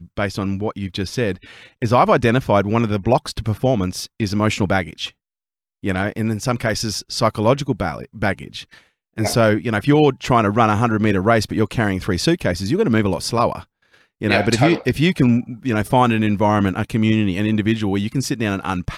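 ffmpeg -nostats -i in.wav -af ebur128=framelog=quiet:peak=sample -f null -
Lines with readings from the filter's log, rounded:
Integrated loudness:
  I:         -18.9 LUFS
  Threshold: -29.3 LUFS
Loudness range:
  LRA:         4.6 LU
  Threshold: -39.2 LUFS
  LRA low:   -22.0 LUFS
  LRA high:  -17.5 LUFS
Sample peak:
  Peak:       -3.6 dBFS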